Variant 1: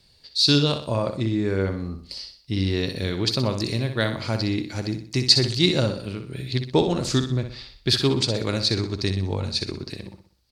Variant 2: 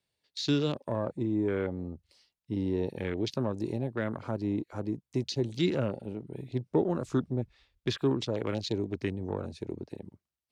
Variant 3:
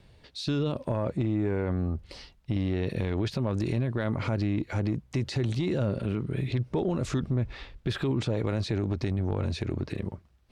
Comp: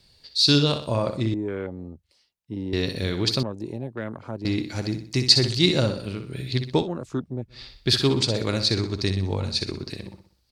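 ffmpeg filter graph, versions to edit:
-filter_complex "[1:a]asplit=3[s0][s1][s2];[0:a]asplit=4[s3][s4][s5][s6];[s3]atrim=end=1.342[s7];[s0]atrim=start=1.338:end=2.732[s8];[s4]atrim=start=2.728:end=3.432[s9];[s1]atrim=start=3.428:end=4.452[s10];[s5]atrim=start=4.448:end=6.9[s11];[s2]atrim=start=6.74:end=7.64[s12];[s6]atrim=start=7.48[s13];[s7][s8]acrossfade=d=0.004:c1=hsin:c2=hsin[s14];[s14][s9]acrossfade=d=0.004:c1=hsin:c2=hsin[s15];[s15][s10]acrossfade=d=0.004:c1=hsin:c2=hsin[s16];[s16][s11]acrossfade=d=0.004:c1=hsin:c2=hsin[s17];[s17][s12]acrossfade=d=0.16:c1=tri:c2=tri[s18];[s18][s13]acrossfade=d=0.16:c1=tri:c2=tri"

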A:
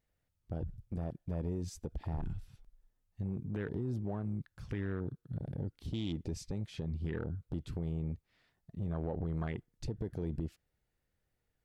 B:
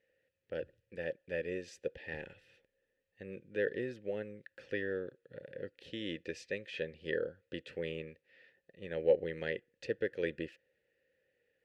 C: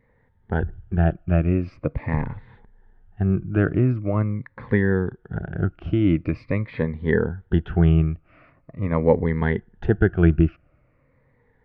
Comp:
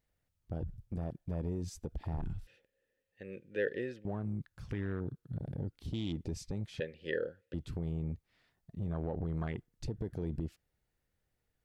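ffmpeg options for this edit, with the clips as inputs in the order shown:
-filter_complex "[1:a]asplit=2[s0][s1];[0:a]asplit=3[s2][s3][s4];[s2]atrim=end=2.472[s5];[s0]atrim=start=2.468:end=4.052[s6];[s3]atrim=start=4.048:end=6.802[s7];[s1]atrim=start=6.798:end=7.542[s8];[s4]atrim=start=7.538[s9];[s5][s6]acrossfade=d=0.004:c1=hsin:c2=hsin[s10];[s10][s7]acrossfade=d=0.004:c1=hsin:c2=hsin[s11];[s11][s8]acrossfade=d=0.004:c1=hsin:c2=hsin[s12];[s12][s9]acrossfade=d=0.004:c1=hsin:c2=hsin"

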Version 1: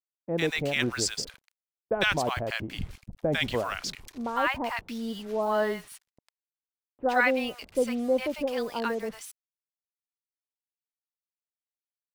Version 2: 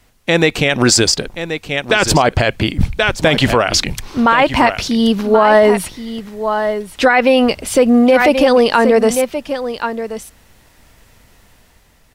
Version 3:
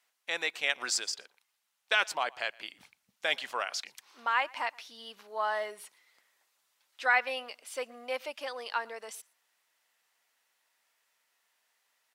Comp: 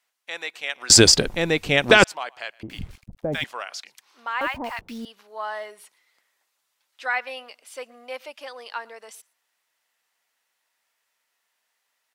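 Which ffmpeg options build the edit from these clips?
-filter_complex "[0:a]asplit=2[s0][s1];[2:a]asplit=4[s2][s3][s4][s5];[s2]atrim=end=0.902[s6];[1:a]atrim=start=0.898:end=2.042[s7];[s3]atrim=start=2.038:end=2.632[s8];[s0]atrim=start=2.628:end=3.442[s9];[s4]atrim=start=3.438:end=4.412[s10];[s1]atrim=start=4.408:end=5.052[s11];[s5]atrim=start=5.048[s12];[s6][s7]acrossfade=d=0.004:c1=hsin:c2=hsin[s13];[s13][s8]acrossfade=d=0.004:c1=hsin:c2=hsin[s14];[s14][s9]acrossfade=d=0.004:c1=hsin:c2=hsin[s15];[s15][s10]acrossfade=d=0.004:c1=hsin:c2=hsin[s16];[s16][s11]acrossfade=d=0.004:c1=hsin:c2=hsin[s17];[s17][s12]acrossfade=d=0.004:c1=hsin:c2=hsin"

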